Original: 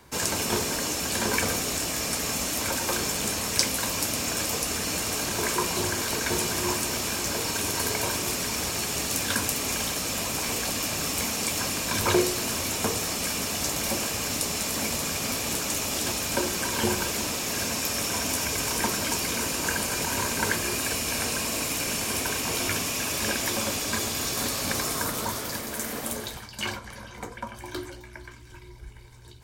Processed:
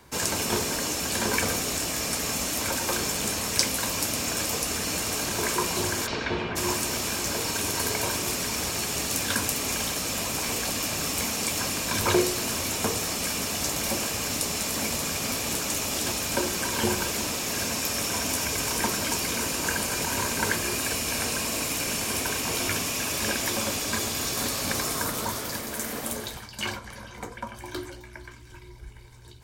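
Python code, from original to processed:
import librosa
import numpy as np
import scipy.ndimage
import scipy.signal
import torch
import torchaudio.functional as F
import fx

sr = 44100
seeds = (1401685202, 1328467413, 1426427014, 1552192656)

y = fx.lowpass(x, sr, hz=fx.line((6.06, 5500.0), (6.55, 2700.0)), slope=24, at=(6.06, 6.55), fade=0.02)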